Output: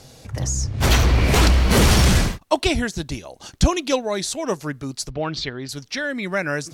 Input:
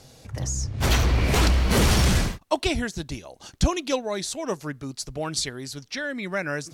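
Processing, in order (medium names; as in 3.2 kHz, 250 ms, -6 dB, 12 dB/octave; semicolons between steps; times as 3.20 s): 5.10–5.69 s: low-pass 4.2 kHz 24 dB/octave; trim +4.5 dB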